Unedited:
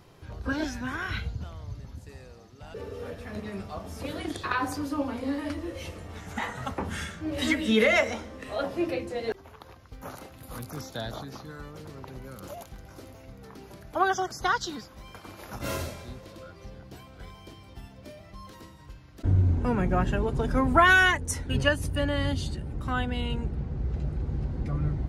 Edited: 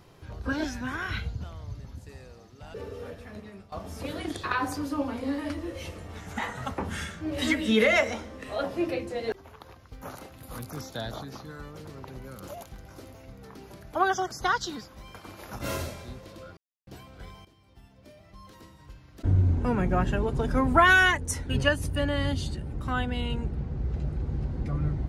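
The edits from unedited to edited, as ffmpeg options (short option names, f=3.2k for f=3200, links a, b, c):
-filter_complex "[0:a]asplit=5[a][b][c][d][e];[a]atrim=end=3.72,asetpts=PTS-STARTPTS,afade=t=out:st=2.84:d=0.88:silence=0.177828[f];[b]atrim=start=3.72:end=16.57,asetpts=PTS-STARTPTS,afade=t=in:d=0.004:c=hsin:silence=0.177828,afade=t=out:st=12.846:d=0.004:c=hsin[g];[c]atrim=start=16.57:end=16.87,asetpts=PTS-STARTPTS,volume=0[h];[d]atrim=start=16.87:end=17.45,asetpts=PTS-STARTPTS,afade=t=in:d=0.004:c=hsin,afade=t=out:st=0.576:d=0.004:c=hsin:silence=0.177828[i];[e]atrim=start=17.45,asetpts=PTS-STARTPTS,afade=t=in:d=1.82:silence=0.177828[j];[f][g][h][i][j]concat=n=5:v=0:a=1"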